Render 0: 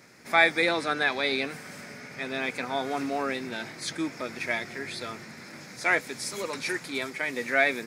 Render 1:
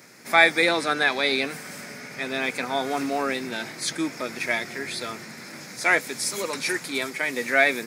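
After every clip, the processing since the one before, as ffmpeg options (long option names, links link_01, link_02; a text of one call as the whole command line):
ffmpeg -i in.wav -af "highpass=120,highshelf=frequency=7400:gain=8,volume=3.5dB" out.wav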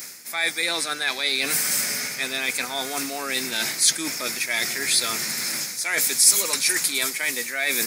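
ffmpeg -i in.wav -af "areverse,acompressor=threshold=-32dB:ratio=6,areverse,crystalizer=i=7.5:c=0,volume=2dB" out.wav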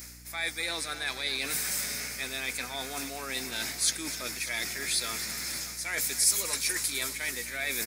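ffmpeg -i in.wav -filter_complex "[0:a]asplit=2[link_01][link_02];[link_02]aecho=0:1:255|591:0.188|0.188[link_03];[link_01][link_03]amix=inputs=2:normalize=0,aeval=exprs='val(0)+0.00794*(sin(2*PI*60*n/s)+sin(2*PI*2*60*n/s)/2+sin(2*PI*3*60*n/s)/3+sin(2*PI*4*60*n/s)/4+sin(2*PI*5*60*n/s)/5)':channel_layout=same,volume=-8.5dB" out.wav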